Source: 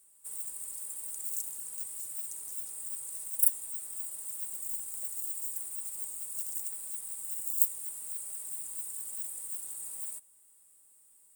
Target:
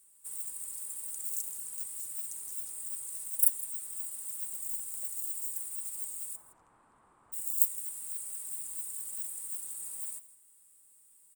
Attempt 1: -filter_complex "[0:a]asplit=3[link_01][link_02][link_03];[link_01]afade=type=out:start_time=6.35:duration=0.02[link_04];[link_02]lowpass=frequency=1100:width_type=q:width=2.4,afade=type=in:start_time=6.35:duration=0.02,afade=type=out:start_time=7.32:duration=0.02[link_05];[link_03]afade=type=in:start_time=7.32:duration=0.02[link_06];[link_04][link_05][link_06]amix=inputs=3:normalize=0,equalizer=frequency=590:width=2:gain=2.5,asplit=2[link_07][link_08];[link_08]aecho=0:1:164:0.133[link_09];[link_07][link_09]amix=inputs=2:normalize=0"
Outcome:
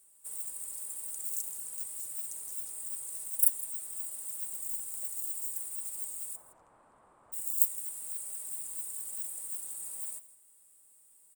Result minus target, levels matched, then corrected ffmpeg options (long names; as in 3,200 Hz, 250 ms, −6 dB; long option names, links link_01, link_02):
500 Hz band +5.5 dB
-filter_complex "[0:a]asplit=3[link_01][link_02][link_03];[link_01]afade=type=out:start_time=6.35:duration=0.02[link_04];[link_02]lowpass=frequency=1100:width_type=q:width=2.4,afade=type=in:start_time=6.35:duration=0.02,afade=type=out:start_time=7.32:duration=0.02[link_05];[link_03]afade=type=in:start_time=7.32:duration=0.02[link_06];[link_04][link_05][link_06]amix=inputs=3:normalize=0,equalizer=frequency=590:width=2:gain=-6,asplit=2[link_07][link_08];[link_08]aecho=0:1:164:0.133[link_09];[link_07][link_09]amix=inputs=2:normalize=0"